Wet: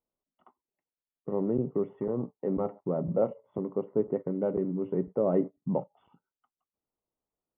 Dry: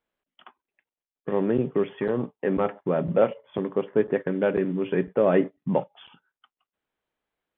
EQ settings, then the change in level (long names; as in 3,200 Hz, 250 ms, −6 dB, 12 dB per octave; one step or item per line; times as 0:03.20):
Savitzky-Golay smoothing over 65 samples
low-shelf EQ 450 Hz +5.5 dB
−8.5 dB